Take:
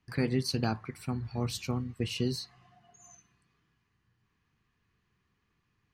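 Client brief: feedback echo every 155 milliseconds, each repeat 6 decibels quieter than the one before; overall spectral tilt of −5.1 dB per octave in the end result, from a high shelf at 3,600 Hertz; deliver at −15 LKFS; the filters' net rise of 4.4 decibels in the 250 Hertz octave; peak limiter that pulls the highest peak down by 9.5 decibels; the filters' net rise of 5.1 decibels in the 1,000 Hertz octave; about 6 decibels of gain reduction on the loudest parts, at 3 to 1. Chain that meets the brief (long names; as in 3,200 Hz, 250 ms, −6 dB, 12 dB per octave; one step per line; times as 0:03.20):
parametric band 250 Hz +4.5 dB
parametric band 1,000 Hz +7 dB
high-shelf EQ 3,600 Hz −3.5 dB
downward compressor 3 to 1, threshold −29 dBFS
brickwall limiter −27.5 dBFS
repeating echo 155 ms, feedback 50%, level −6 dB
level +23 dB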